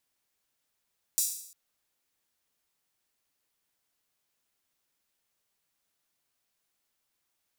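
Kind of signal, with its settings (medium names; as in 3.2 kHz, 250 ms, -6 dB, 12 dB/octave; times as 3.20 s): open hi-hat length 0.35 s, high-pass 6.6 kHz, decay 0.67 s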